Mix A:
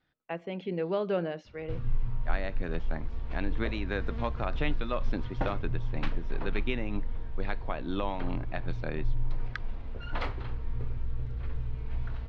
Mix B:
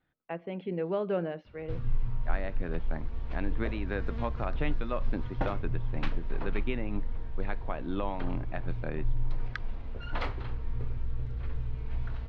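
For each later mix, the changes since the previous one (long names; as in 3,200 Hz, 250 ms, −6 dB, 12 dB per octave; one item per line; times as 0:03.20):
speech: add high-frequency loss of the air 300 metres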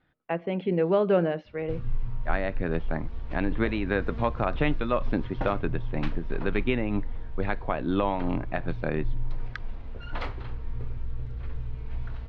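speech +8.0 dB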